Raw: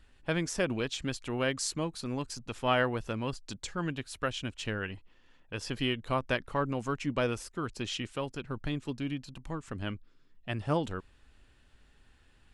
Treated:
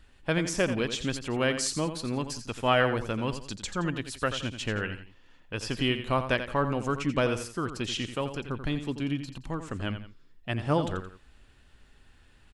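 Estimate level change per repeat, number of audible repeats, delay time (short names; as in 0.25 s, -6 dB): -9.0 dB, 2, 86 ms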